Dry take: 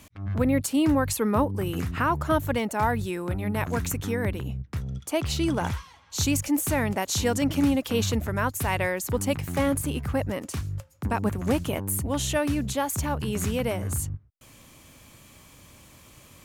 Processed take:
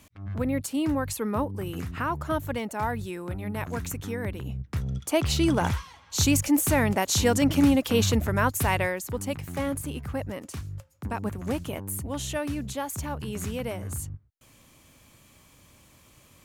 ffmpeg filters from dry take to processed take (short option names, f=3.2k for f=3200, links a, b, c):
-af "volume=2.5dB,afade=t=in:st=4.34:d=0.53:silence=0.446684,afade=t=out:st=8.65:d=0.41:silence=0.421697"